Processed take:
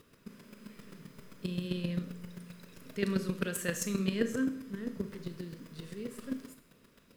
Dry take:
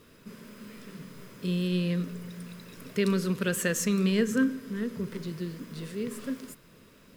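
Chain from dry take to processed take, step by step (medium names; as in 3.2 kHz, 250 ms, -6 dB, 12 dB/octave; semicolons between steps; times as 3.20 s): square tremolo 7.6 Hz, depth 65%, duty 10%; Schroeder reverb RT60 0.53 s, combs from 27 ms, DRR 9 dB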